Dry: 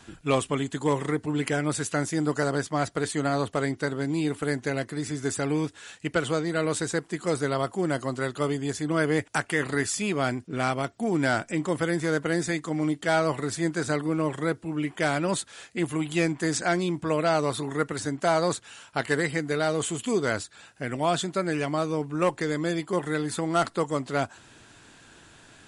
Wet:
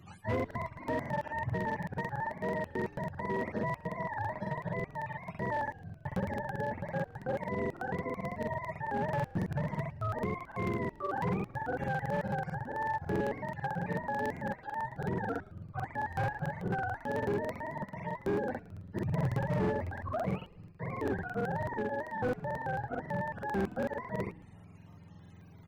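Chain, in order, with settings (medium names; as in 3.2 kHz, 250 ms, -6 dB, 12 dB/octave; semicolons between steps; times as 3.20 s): spectrum inverted on a logarithmic axis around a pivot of 520 Hz; 14.46–15.03 s: high-pass 140 Hz 12 dB/octave; in parallel at -2 dB: compression 5:1, threshold -38 dBFS, peak gain reduction 17.5 dB; 18.98–19.75 s: on the sum: bass shelf 390 Hz +9.5 dB; overload inside the chain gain 18.5 dB; on a send: frequency-shifting echo 114 ms, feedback 52%, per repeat -69 Hz, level -22 dB; on the sum: crackling interface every 0.11 s, samples 2048, repeat, from 0.35 s; trim -8 dB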